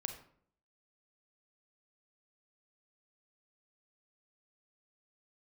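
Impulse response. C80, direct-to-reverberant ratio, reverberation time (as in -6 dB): 12.0 dB, 6.0 dB, 0.60 s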